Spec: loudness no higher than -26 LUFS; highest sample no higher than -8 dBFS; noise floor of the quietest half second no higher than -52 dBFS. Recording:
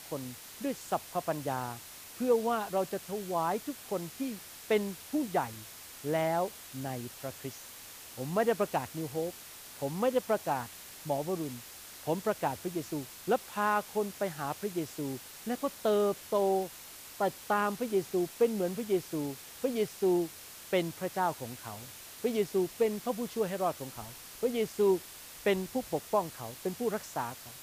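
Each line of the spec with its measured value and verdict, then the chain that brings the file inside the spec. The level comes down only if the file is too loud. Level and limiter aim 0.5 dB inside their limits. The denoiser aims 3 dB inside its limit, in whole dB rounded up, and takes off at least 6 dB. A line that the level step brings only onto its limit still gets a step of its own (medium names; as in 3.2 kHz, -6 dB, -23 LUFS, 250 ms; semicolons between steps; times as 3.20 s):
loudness -33.0 LUFS: pass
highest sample -16.0 dBFS: pass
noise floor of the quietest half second -49 dBFS: fail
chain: noise reduction 6 dB, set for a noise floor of -49 dBFS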